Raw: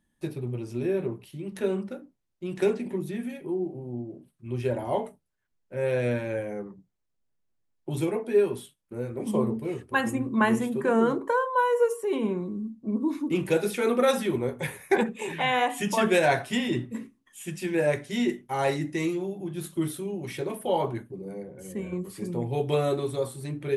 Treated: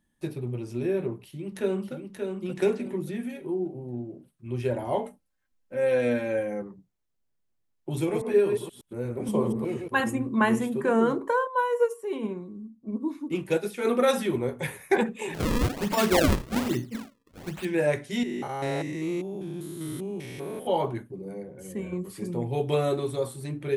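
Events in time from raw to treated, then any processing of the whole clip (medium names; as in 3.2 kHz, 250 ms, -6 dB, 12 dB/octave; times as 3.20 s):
1.24–1.94 s: echo throw 580 ms, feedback 30%, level -5 dB
5.05–6.62 s: comb 3.8 ms
7.98–10.04 s: chunks repeated in reverse 119 ms, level -6 dB
11.47–13.85 s: upward expansion, over -34 dBFS
15.34–17.65 s: decimation with a swept rate 34×, swing 160% 1.2 Hz
18.23–20.67 s: spectrogram pixelated in time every 200 ms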